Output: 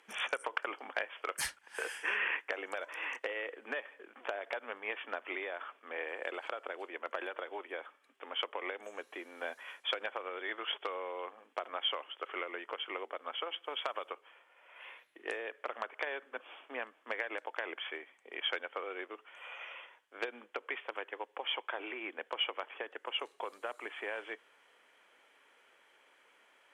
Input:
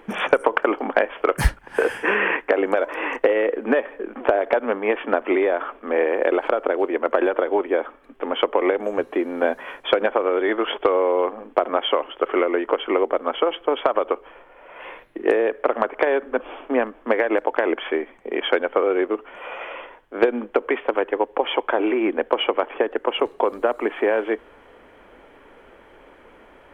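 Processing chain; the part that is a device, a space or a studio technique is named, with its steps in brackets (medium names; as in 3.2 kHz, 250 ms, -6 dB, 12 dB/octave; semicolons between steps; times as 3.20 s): piezo pickup straight into a mixer (low-pass 8.3 kHz 12 dB/octave; differentiator); 13.64–14.10 s: treble shelf 4.3 kHz +8.5 dB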